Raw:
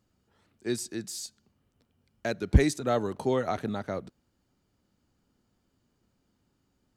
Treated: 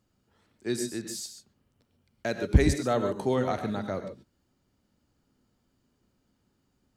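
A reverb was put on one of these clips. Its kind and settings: gated-style reverb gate 160 ms rising, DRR 7.5 dB

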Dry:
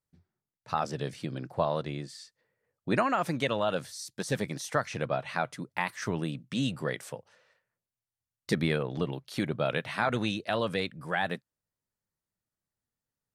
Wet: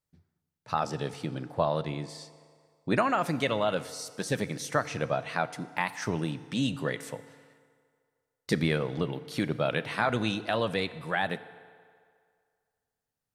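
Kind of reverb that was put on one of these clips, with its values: FDN reverb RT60 2.1 s, low-frequency decay 0.75×, high-frequency decay 0.75×, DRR 13.5 dB; trim +1 dB

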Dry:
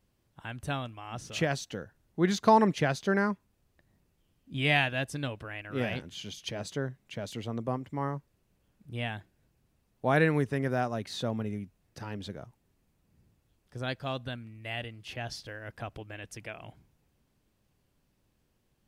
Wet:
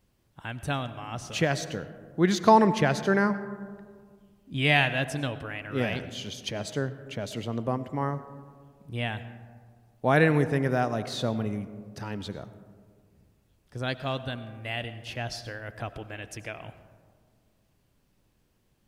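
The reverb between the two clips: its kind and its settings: algorithmic reverb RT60 1.9 s, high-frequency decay 0.3×, pre-delay 55 ms, DRR 13 dB; trim +3.5 dB

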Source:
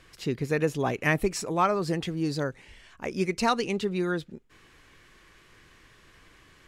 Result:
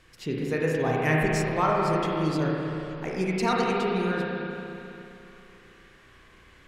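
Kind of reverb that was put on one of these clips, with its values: spring tank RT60 3 s, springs 32/50 ms, chirp 50 ms, DRR -3.5 dB; trim -3 dB

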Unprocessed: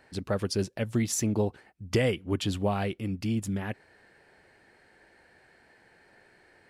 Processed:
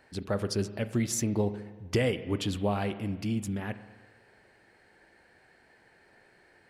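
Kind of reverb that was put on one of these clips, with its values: spring tank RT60 1.4 s, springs 34/39 ms, chirp 40 ms, DRR 11.5 dB; trim -1.5 dB

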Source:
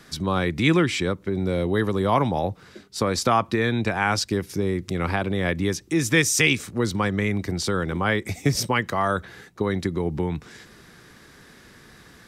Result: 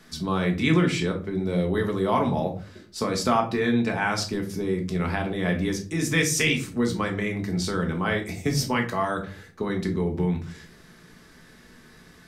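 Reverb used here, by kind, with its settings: simulated room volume 230 m³, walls furnished, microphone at 1.5 m; trim -5 dB

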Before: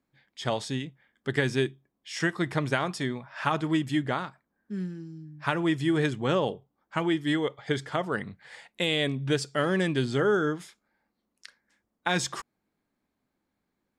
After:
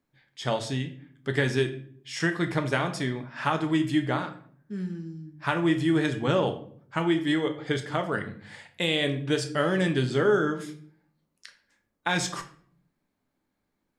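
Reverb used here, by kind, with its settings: simulated room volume 71 m³, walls mixed, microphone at 0.38 m

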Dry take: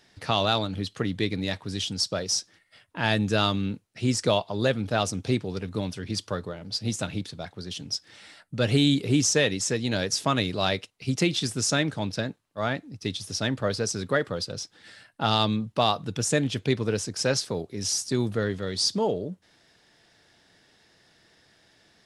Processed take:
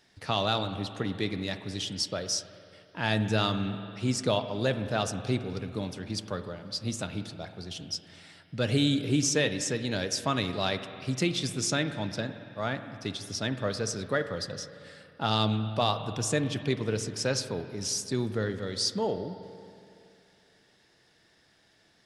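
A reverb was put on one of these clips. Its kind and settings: spring tank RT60 2.6 s, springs 46/55 ms, chirp 55 ms, DRR 9.5 dB; trim -4 dB

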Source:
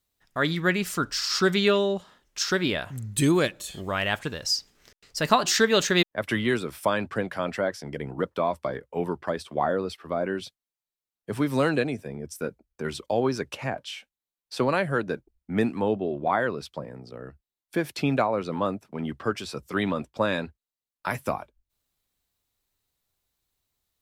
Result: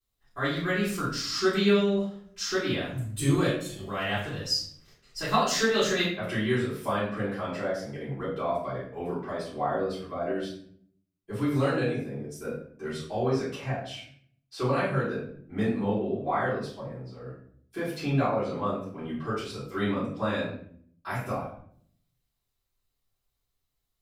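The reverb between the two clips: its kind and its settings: simulated room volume 89 m³, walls mixed, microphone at 3.8 m; trim -17 dB

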